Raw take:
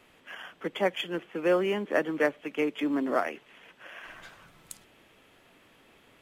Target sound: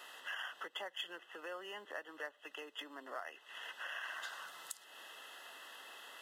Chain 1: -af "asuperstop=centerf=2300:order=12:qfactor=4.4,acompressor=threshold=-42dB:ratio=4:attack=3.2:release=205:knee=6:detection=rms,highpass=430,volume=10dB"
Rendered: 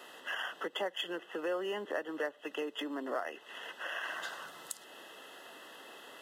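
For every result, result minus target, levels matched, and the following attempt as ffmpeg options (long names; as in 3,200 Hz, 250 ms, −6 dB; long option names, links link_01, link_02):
500 Hz band +5.0 dB; downward compressor: peak gain reduction −5 dB
-af "asuperstop=centerf=2300:order=12:qfactor=4.4,acompressor=threshold=-42dB:ratio=4:attack=3.2:release=205:knee=6:detection=rms,highpass=880,volume=10dB"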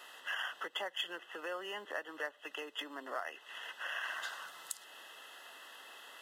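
downward compressor: peak gain reduction −5 dB
-af "asuperstop=centerf=2300:order=12:qfactor=4.4,acompressor=threshold=-48.5dB:ratio=4:attack=3.2:release=205:knee=6:detection=rms,highpass=880,volume=10dB"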